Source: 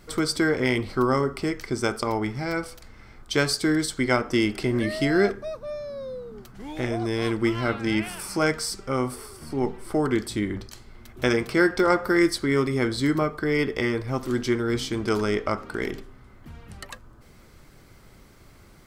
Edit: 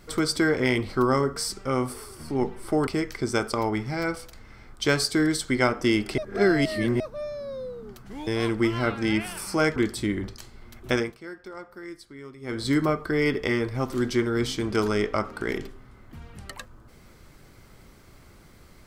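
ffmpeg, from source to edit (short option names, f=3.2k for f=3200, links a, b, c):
-filter_complex "[0:a]asplit=9[a][b][c][d][e][f][g][h][i];[a]atrim=end=1.362[j];[b]atrim=start=8.578:end=10.092[k];[c]atrim=start=1.358:end=4.672[l];[d]atrim=start=4.668:end=5.492,asetpts=PTS-STARTPTS,areverse[m];[e]atrim=start=5.488:end=6.762[n];[f]atrim=start=7.088:end=8.582[o];[g]atrim=start=10.088:end=11.5,asetpts=PTS-STARTPTS,afade=t=out:st=1.132:d=0.28:silence=0.1[p];[h]atrim=start=11.5:end=12.74,asetpts=PTS-STARTPTS,volume=-20dB[q];[i]atrim=start=12.74,asetpts=PTS-STARTPTS,afade=t=in:d=0.28:silence=0.1[r];[j][k]acrossfade=d=0.004:c1=hsin:c2=hsin[s];[s][l]acrossfade=d=0.004:c1=hsin:c2=hsin[t];[t][m]acrossfade=d=0.004:c1=hsin:c2=hsin[u];[u][n]acrossfade=d=0.004:c1=hsin:c2=hsin[v];[v][o]acrossfade=d=0.004:c1=hsin:c2=hsin[w];[p][q][r]concat=n=3:v=0:a=1[x];[w][x]acrossfade=d=0.004:c1=hsin:c2=hsin"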